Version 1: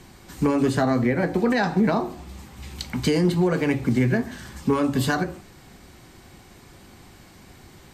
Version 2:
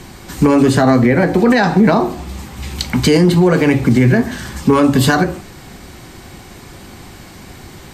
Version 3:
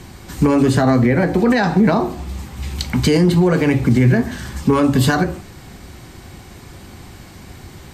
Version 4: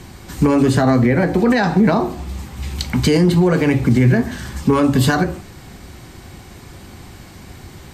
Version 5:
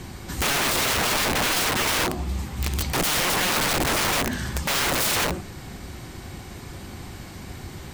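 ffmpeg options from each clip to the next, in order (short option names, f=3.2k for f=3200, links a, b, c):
-af "alimiter=level_in=14dB:limit=-1dB:release=50:level=0:latency=1,volume=-2dB"
-af "equalizer=f=77:w=0.76:g=5.5,volume=-4dB"
-af anull
-af "aeval=exprs='(mod(7.94*val(0)+1,2)-1)/7.94':c=same"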